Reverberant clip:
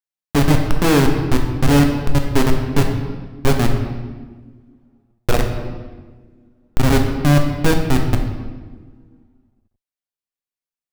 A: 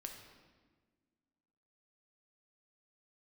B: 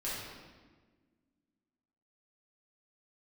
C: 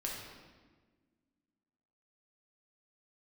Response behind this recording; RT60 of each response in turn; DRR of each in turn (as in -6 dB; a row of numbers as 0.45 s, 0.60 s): A; 1.5 s, 1.4 s, 1.4 s; 2.5 dB, -9.5 dB, -3.0 dB